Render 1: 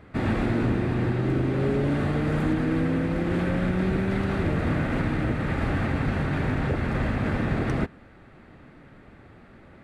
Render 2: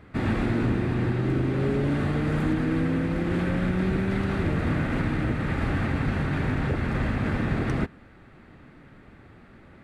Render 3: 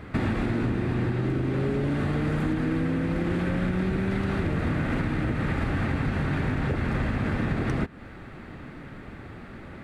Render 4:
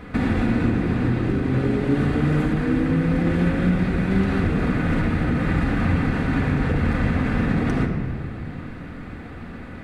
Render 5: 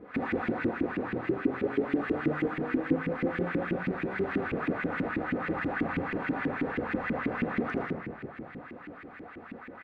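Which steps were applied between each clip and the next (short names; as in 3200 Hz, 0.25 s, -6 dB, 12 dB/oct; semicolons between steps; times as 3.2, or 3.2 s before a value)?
bell 610 Hz -3 dB 1 oct
compressor 6:1, threshold -32 dBFS, peak gain reduction 11.5 dB; gain +8.5 dB
shoebox room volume 3800 m³, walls mixed, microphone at 1.9 m; gain +2 dB
echo 80 ms -4 dB; LFO band-pass saw up 6.2 Hz 280–2500 Hz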